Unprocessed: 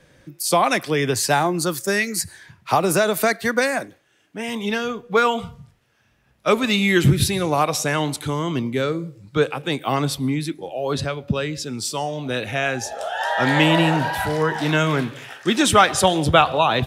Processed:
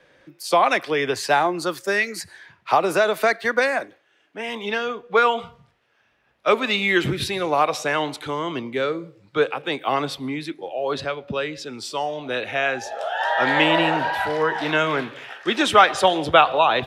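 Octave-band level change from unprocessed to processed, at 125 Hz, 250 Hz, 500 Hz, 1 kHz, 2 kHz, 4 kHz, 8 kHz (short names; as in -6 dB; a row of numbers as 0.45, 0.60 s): -11.5, -5.5, 0.0, +1.0, +0.5, -1.5, -10.0 dB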